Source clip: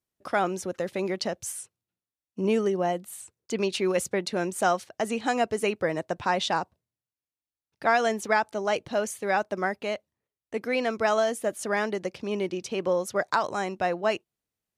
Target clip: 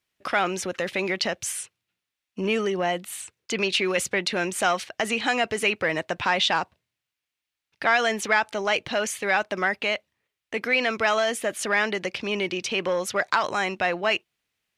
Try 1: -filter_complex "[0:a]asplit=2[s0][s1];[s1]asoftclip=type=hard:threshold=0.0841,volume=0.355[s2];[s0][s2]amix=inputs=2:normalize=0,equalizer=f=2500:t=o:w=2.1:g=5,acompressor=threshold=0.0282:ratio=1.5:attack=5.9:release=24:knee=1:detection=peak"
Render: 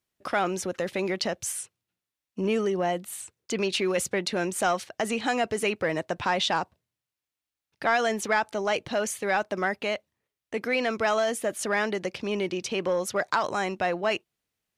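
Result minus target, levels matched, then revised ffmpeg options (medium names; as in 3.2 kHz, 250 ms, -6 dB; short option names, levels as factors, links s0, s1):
2 kHz band -2.5 dB
-filter_complex "[0:a]asplit=2[s0][s1];[s1]asoftclip=type=hard:threshold=0.0841,volume=0.355[s2];[s0][s2]amix=inputs=2:normalize=0,equalizer=f=2500:t=o:w=2.1:g=13.5,acompressor=threshold=0.0282:ratio=1.5:attack=5.9:release=24:knee=1:detection=peak"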